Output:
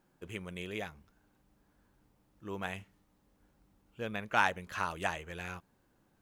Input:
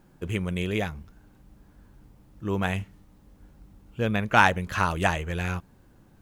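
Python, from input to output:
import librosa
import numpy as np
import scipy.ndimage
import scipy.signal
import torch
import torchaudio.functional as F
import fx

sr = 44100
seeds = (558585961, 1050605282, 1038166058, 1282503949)

y = fx.low_shelf(x, sr, hz=210.0, db=-11.0)
y = y * 10.0 ** (-9.0 / 20.0)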